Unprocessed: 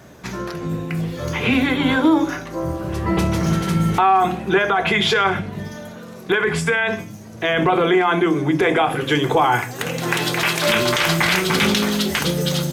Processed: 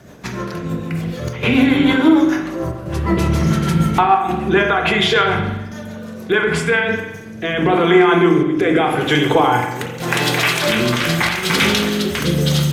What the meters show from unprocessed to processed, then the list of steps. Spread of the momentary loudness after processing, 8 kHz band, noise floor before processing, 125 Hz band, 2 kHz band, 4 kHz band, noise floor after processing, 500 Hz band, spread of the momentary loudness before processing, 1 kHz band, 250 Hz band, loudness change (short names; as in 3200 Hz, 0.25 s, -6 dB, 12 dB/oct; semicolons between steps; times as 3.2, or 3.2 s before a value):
12 LU, +0.5 dB, -37 dBFS, +3.5 dB, +2.0 dB, +2.0 dB, -31 dBFS, +3.0 dB, 10 LU, +1.0 dB, +4.0 dB, +2.5 dB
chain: rotary speaker horn 6.7 Hz, later 0.85 Hz, at 6.33; chopper 0.7 Hz, depth 60%, duty 90%; spring tank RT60 1 s, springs 41 ms, chirp 30 ms, DRR 4 dB; gain +3.5 dB